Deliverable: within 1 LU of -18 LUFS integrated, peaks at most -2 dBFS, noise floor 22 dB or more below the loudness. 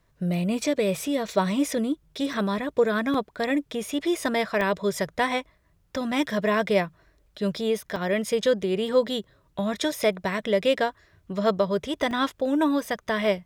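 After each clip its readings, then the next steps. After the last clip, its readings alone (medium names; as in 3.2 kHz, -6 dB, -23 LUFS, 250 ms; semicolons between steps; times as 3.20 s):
dropouts 6; longest dropout 3.2 ms; loudness -26.0 LUFS; peak level -9.0 dBFS; loudness target -18.0 LUFS
-> interpolate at 2.33/3.14/4.61/7.96/9.92/12.11 s, 3.2 ms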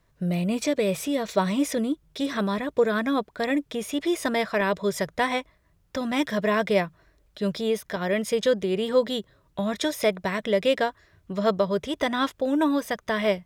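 dropouts 0; loudness -26.0 LUFS; peak level -9.0 dBFS; loudness target -18.0 LUFS
-> trim +8 dB; peak limiter -2 dBFS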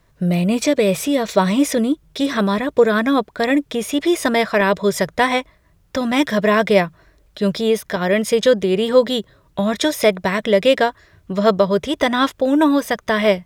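loudness -18.0 LUFS; peak level -2.0 dBFS; noise floor -57 dBFS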